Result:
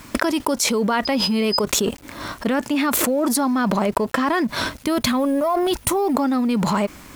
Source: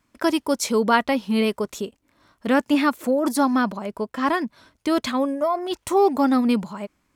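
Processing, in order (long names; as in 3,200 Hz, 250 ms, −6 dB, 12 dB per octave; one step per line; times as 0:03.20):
mu-law and A-law mismatch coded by A
0:01.05–0:01.61: steady tone 5,000 Hz −44 dBFS
0:04.85–0:06.15: gain on a spectral selection 250–9,000 Hz −7 dB
envelope flattener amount 100%
level −4.5 dB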